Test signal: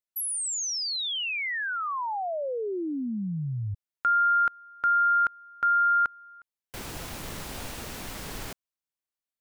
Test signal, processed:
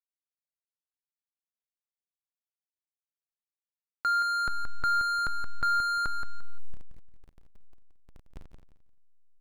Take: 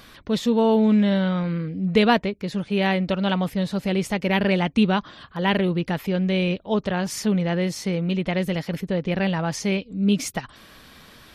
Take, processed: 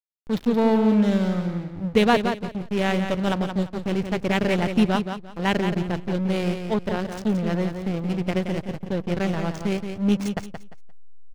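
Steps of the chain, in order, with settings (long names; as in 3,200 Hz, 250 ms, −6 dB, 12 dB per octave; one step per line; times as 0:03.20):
slack as between gear wheels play −20.5 dBFS
repeating echo 174 ms, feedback 24%, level −7.5 dB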